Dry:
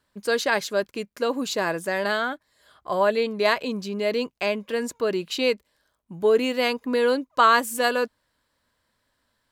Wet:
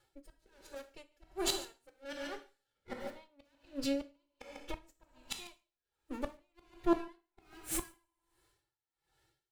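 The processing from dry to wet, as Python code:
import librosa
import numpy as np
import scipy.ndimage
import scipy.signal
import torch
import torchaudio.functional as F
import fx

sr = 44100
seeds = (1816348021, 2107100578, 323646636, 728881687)

p1 = fx.lower_of_two(x, sr, delay_ms=3.1)
p2 = fx.dynamic_eq(p1, sr, hz=320.0, q=3.2, threshold_db=-43.0, ratio=4.0, max_db=-5)
p3 = fx.pitch_keep_formants(p2, sr, semitones=5.5)
p4 = (np.mod(10.0 ** (16.5 / 20.0) * p3 + 1.0, 2.0) - 1.0) / 10.0 ** (16.5 / 20.0)
p5 = p3 + F.gain(torch.from_numpy(p4), -7.0).numpy()
p6 = fx.rotary(p5, sr, hz=1.1)
p7 = fx.gate_flip(p6, sr, shuts_db=-20.0, range_db=-26)
p8 = p7 + fx.echo_single(p7, sr, ms=145, db=-15.5, dry=0)
p9 = fx.rev_double_slope(p8, sr, seeds[0], early_s=0.75, late_s=2.2, knee_db=-25, drr_db=5.5)
p10 = p9 * 10.0 ** (-31 * (0.5 - 0.5 * np.cos(2.0 * np.pi * 1.3 * np.arange(len(p9)) / sr)) / 20.0)
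y = F.gain(torch.from_numpy(p10), 1.5).numpy()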